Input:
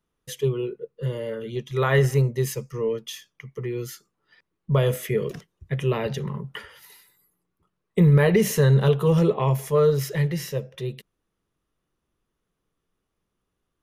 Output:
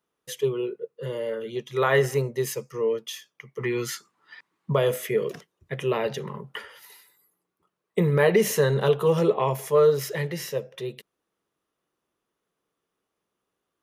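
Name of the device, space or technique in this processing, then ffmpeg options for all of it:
filter by subtraction: -filter_complex "[0:a]asplit=2[s0][s1];[s1]lowpass=540,volume=-1[s2];[s0][s2]amix=inputs=2:normalize=0,asplit=3[s3][s4][s5];[s3]afade=t=out:st=3.59:d=0.02[s6];[s4]equalizer=f=125:t=o:w=1:g=6,equalizer=f=250:t=o:w=1:g=7,equalizer=f=500:t=o:w=1:g=-3,equalizer=f=1000:t=o:w=1:g=10,equalizer=f=2000:t=o:w=1:g=8,equalizer=f=4000:t=o:w=1:g=6,equalizer=f=8000:t=o:w=1:g=6,afade=t=in:st=3.59:d=0.02,afade=t=out:st=4.72:d=0.02[s7];[s5]afade=t=in:st=4.72:d=0.02[s8];[s6][s7][s8]amix=inputs=3:normalize=0"

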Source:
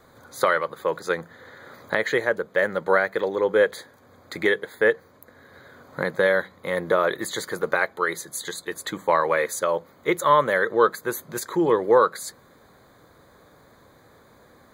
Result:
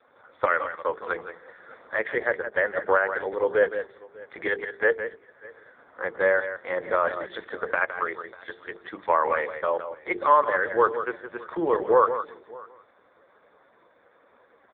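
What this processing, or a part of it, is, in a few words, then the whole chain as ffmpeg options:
satellite phone: -filter_complex "[0:a]bandreject=f=50:t=h:w=6,bandreject=f=100:t=h:w=6,bandreject=f=150:t=h:w=6,bandreject=f=200:t=h:w=6,bandreject=f=250:t=h:w=6,bandreject=f=300:t=h:w=6,bandreject=f=350:t=h:w=6,bandreject=f=400:t=h:w=6,bandreject=f=450:t=h:w=6,asettb=1/sr,asplit=3[s0][s1][s2];[s0]atrim=end=8.054[s3];[s1]atrim=start=8.05:end=9.52,asetpts=PTS-STARTPTS,afade=t=in:d=0.004:c=qsin,afade=t=out:st=1.466:d=0.004:c=qsin,adynamicequalizer=threshold=0.00562:dfrequency=2500:dqfactor=5.7:tfrequency=2500:tqfactor=5.7:attack=5:release=100:ratio=0.375:range=2:mode=cutabove:tftype=bell[s4];[s2]atrim=start=9.516[s5];[s3][s4]acrossfade=d=0.004:c1=hsin:c2=qsin[s6];[s6][s5]acrossfade=d=0.004:c1=qsin:c2=hsin,highpass=360,lowpass=3200,aecho=1:1:165:0.316,aecho=1:1:597:0.075" -ar 8000 -c:a libopencore_amrnb -b:a 4750

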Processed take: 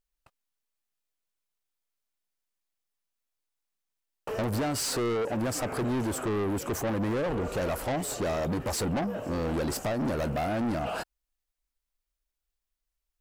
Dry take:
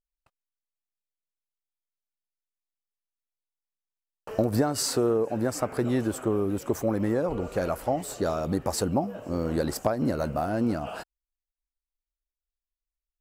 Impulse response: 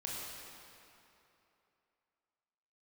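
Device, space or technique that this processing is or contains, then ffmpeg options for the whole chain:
saturation between pre-emphasis and de-emphasis: -af "highshelf=f=11000:g=9,asoftclip=type=tanh:threshold=0.0237,highshelf=f=11000:g=-9,volume=2"

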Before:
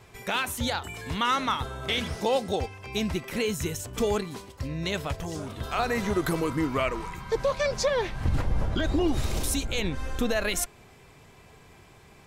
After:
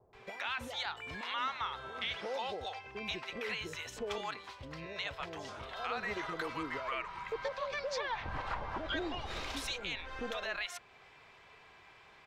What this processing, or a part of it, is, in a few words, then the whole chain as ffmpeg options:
DJ mixer with the lows and highs turned down: -filter_complex "[0:a]asettb=1/sr,asplit=3[s0][s1][s2];[s0]atrim=end=7.984[s3];[s1]atrim=start=7.98:end=8.65,asetpts=PTS-STARTPTS,afade=t=in:d=0.004:c=qsin,afade=t=out:st=0.666:d=0.004:c=qsin,equalizer=f=970:w=1.2:g=8.5[s4];[s2]atrim=start=8.646[s5];[s3][s4]acrossfade=d=0.004:c1=hsin:c2=qsin[s6];[s6][s5]acrossfade=d=0.004:c1=qsin:c2=hsin,acrossover=split=530 4600:gain=0.141 1 0.0794[s7][s8][s9];[s7][s8][s9]amix=inputs=3:normalize=0,alimiter=level_in=1.19:limit=0.0631:level=0:latency=1:release=399,volume=0.841,acrossover=split=660[s10][s11];[s11]adelay=130[s12];[s10][s12]amix=inputs=2:normalize=0"

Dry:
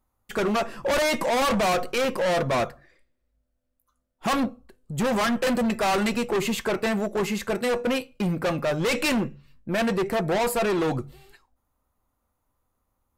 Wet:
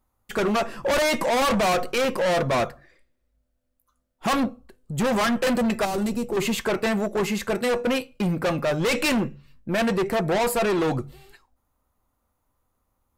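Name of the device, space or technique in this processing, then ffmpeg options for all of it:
parallel distortion: -filter_complex "[0:a]asettb=1/sr,asplit=3[s0][s1][s2];[s0]atrim=end=5.854[s3];[s1]atrim=start=5.85:end=6.37,asetpts=PTS-STARTPTS,afade=t=in:d=0.004:c=qsin,afade=t=out:st=0.516:d=0.004:c=qsin,equalizer=f=2000:t=o:w=2.7:g=-14.5[s4];[s2]atrim=start=6.366[s5];[s3][s4]acrossfade=d=0.004:c1=hsin:c2=qsin[s6];[s6][s5]acrossfade=d=0.004:c1=qsin:c2=hsin,asplit=2[s7][s8];[s8]asoftclip=type=hard:threshold=0.0531,volume=0.251[s9];[s7][s9]amix=inputs=2:normalize=0"

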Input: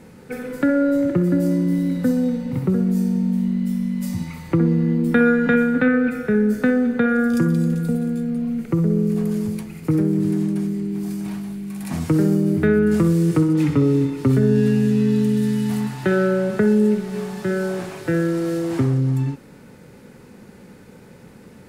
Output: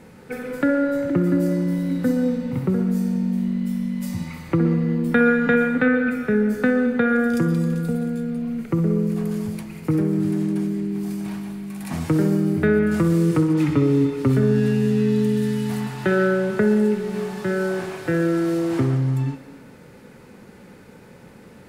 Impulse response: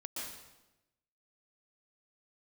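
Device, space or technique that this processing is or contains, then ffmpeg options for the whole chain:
filtered reverb send: -filter_complex "[0:a]asplit=2[s0][s1];[s1]highpass=390,lowpass=4600[s2];[1:a]atrim=start_sample=2205[s3];[s2][s3]afir=irnorm=-1:irlink=0,volume=0.596[s4];[s0][s4]amix=inputs=2:normalize=0,volume=0.841"

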